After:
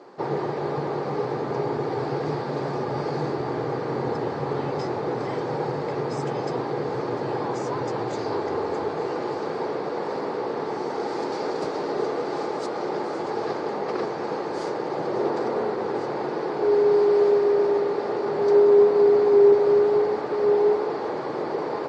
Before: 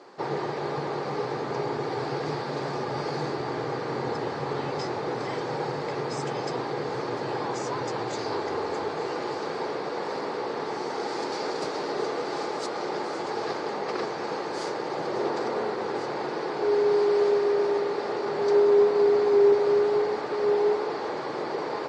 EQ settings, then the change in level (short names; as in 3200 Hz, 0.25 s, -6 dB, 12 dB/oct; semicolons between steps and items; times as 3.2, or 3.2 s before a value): tilt shelf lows +4.5 dB, about 1300 Hz; 0.0 dB